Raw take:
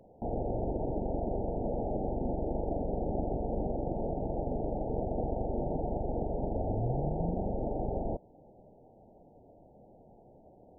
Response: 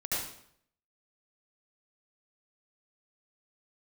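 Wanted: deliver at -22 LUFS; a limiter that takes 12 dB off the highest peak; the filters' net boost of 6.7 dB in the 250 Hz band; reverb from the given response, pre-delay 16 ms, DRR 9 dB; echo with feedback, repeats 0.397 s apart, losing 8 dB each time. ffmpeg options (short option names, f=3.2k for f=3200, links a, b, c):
-filter_complex "[0:a]equalizer=f=250:t=o:g=8.5,alimiter=level_in=5dB:limit=-24dB:level=0:latency=1,volume=-5dB,aecho=1:1:397|794|1191|1588|1985:0.398|0.159|0.0637|0.0255|0.0102,asplit=2[a][b];[1:a]atrim=start_sample=2205,adelay=16[c];[b][c]afir=irnorm=-1:irlink=0,volume=-15dB[d];[a][d]amix=inputs=2:normalize=0,volume=14.5dB"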